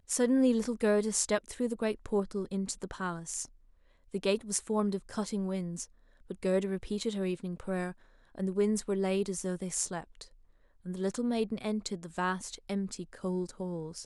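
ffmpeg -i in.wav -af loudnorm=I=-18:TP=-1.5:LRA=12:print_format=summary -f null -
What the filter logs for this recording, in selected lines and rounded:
Input Integrated:    -33.3 LUFS
Input True Peak:     -10.8 dBTP
Input LRA:             1.9 LU
Input Threshold:     -43.6 LUFS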